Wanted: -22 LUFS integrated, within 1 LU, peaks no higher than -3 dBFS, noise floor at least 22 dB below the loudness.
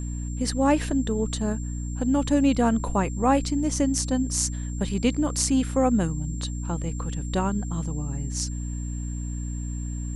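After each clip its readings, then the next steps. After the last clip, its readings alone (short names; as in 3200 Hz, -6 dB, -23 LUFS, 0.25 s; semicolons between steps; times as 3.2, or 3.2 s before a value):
hum 60 Hz; harmonics up to 300 Hz; hum level -28 dBFS; steady tone 7400 Hz; tone level -43 dBFS; loudness -26.0 LUFS; peak -6.5 dBFS; loudness target -22.0 LUFS
-> de-hum 60 Hz, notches 5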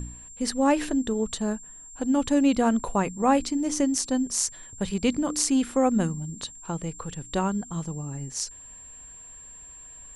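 hum none; steady tone 7400 Hz; tone level -43 dBFS
-> notch 7400 Hz, Q 30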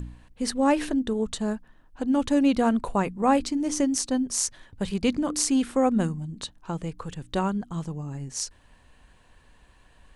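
steady tone none; loudness -26.5 LUFS; peak -6.5 dBFS; loudness target -22.0 LUFS
-> gain +4.5 dB; limiter -3 dBFS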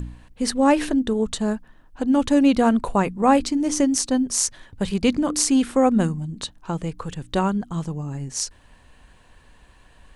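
loudness -22.0 LUFS; peak -3.0 dBFS; noise floor -53 dBFS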